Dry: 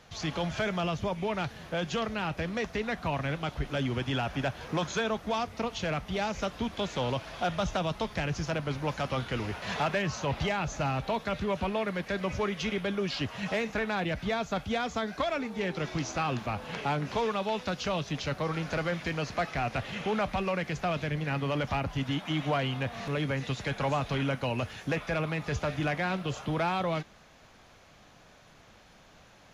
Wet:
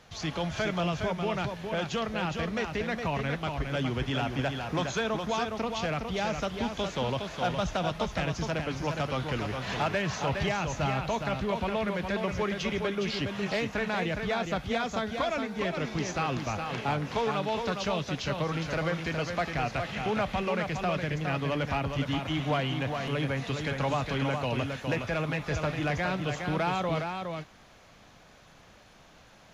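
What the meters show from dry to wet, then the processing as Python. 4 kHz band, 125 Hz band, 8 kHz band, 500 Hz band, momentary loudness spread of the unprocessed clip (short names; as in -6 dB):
+1.0 dB, +1.0 dB, +1.0 dB, +1.0 dB, 3 LU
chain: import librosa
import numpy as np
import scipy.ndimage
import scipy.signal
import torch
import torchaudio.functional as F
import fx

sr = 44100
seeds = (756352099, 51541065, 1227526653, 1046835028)

y = x + 10.0 ** (-5.5 / 20.0) * np.pad(x, (int(413 * sr / 1000.0), 0))[:len(x)]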